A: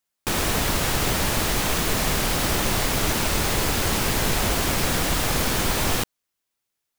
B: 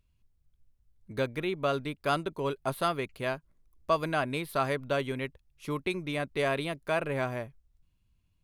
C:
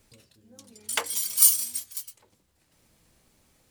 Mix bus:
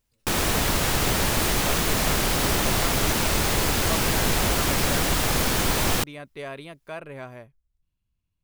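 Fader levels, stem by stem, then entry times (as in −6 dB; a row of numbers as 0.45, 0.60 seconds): 0.0, −7.0, −19.5 decibels; 0.00, 0.00, 0.00 seconds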